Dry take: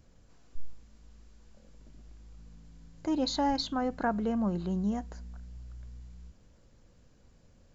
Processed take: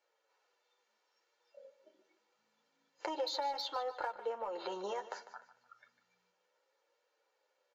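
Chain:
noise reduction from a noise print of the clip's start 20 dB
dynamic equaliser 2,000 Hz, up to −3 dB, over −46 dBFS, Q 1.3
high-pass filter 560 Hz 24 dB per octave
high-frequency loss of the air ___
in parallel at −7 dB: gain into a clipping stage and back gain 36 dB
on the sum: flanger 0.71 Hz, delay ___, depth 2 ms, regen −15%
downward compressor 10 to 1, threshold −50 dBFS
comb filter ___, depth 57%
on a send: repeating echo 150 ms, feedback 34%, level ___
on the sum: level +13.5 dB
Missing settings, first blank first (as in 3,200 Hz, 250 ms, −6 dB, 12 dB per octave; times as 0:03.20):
130 metres, 8.4 ms, 2.2 ms, −14.5 dB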